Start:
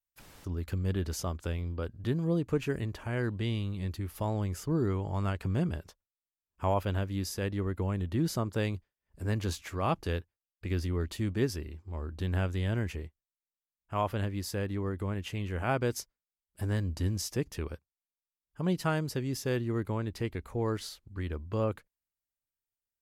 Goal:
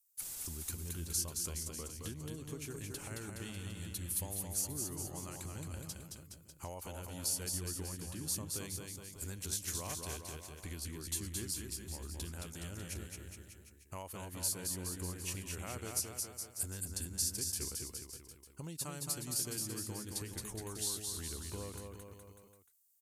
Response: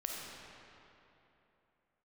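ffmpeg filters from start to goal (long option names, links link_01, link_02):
-af "aemphasis=mode=production:type=50fm,asetrate=40440,aresample=44100,atempo=1.09051,acompressor=threshold=-38dB:ratio=6,equalizer=frequency=8300:width_type=o:width=1.7:gain=14,aecho=1:1:220|418|596.2|756.6|900.9:0.631|0.398|0.251|0.158|0.1,volume=-5.5dB"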